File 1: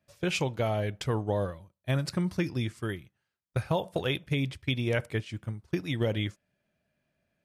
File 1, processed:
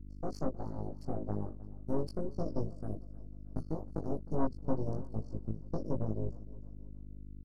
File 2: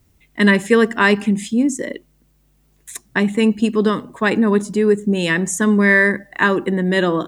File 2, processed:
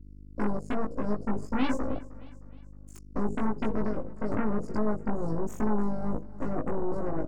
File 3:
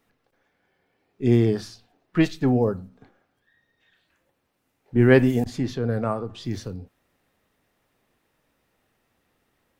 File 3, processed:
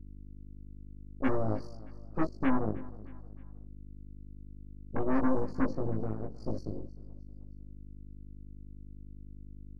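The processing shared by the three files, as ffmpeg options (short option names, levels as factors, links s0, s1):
-filter_complex "[0:a]afftfilt=real='re*(1-between(b*sr/4096,1300,4300))':imag='im*(1-between(b*sr/4096,1300,4300))':win_size=4096:overlap=0.75,agate=range=0.0224:threshold=0.00178:ratio=3:detection=peak,asubboost=boost=11:cutoff=78,acompressor=threshold=0.1:ratio=6,asplit=3[s0][s1][s2];[s0]bandpass=f=270:t=q:w=8,volume=1[s3];[s1]bandpass=f=2290:t=q:w=8,volume=0.501[s4];[s2]bandpass=f=3010:t=q:w=8,volume=0.355[s5];[s3][s4][s5]amix=inputs=3:normalize=0,asoftclip=type=tanh:threshold=0.0473,aeval=exprs='val(0)+0.00251*(sin(2*PI*50*n/s)+sin(2*PI*2*50*n/s)/2+sin(2*PI*3*50*n/s)/3+sin(2*PI*4*50*n/s)/4+sin(2*PI*5*50*n/s)/5)':c=same,aeval=exprs='0.0501*(cos(1*acos(clip(val(0)/0.0501,-1,1)))-cos(1*PI/2))+0.000631*(cos(3*acos(clip(val(0)/0.0501,-1,1)))-cos(3*PI/2))+0.00562*(cos(5*acos(clip(val(0)/0.0501,-1,1)))-cos(5*PI/2))+0.00562*(cos(7*acos(clip(val(0)/0.0501,-1,1)))-cos(7*PI/2))+0.02*(cos(8*acos(clip(val(0)/0.0501,-1,1)))-cos(8*PI/2))':c=same,asplit=2[s6][s7];[s7]adelay=19,volume=0.794[s8];[s6][s8]amix=inputs=2:normalize=0,aecho=1:1:311|622|933:0.1|0.044|0.0194,adynamicequalizer=threshold=0.002:dfrequency=2200:dqfactor=0.7:tfrequency=2200:tqfactor=0.7:attack=5:release=100:ratio=0.375:range=3:mode=cutabove:tftype=highshelf,volume=1.26"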